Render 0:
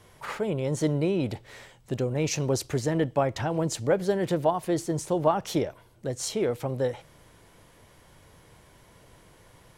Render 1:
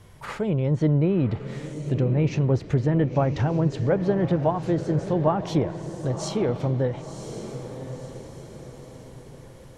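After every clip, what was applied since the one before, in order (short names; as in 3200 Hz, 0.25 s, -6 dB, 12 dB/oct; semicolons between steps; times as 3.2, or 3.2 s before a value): tone controls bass +9 dB, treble 0 dB; diffused feedback echo 1.037 s, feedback 45%, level -10.5 dB; treble ducked by the level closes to 2300 Hz, closed at -18 dBFS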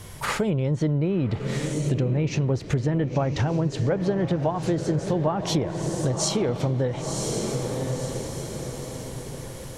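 high shelf 4000 Hz +10 dB; compressor 4:1, threshold -30 dBFS, peak gain reduction 12.5 dB; gain +8 dB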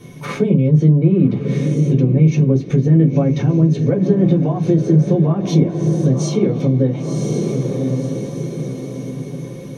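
reverb RT60 0.15 s, pre-delay 3 ms, DRR -2 dB; gain -9.5 dB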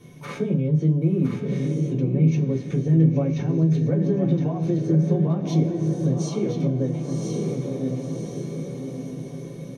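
resonator 80 Hz, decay 0.8 s, harmonics all, mix 60%; on a send: echo 1.014 s -7 dB; on the sum: gain -2 dB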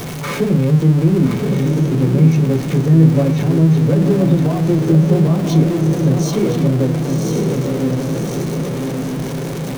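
zero-crossing step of -28.5 dBFS; gain +6.5 dB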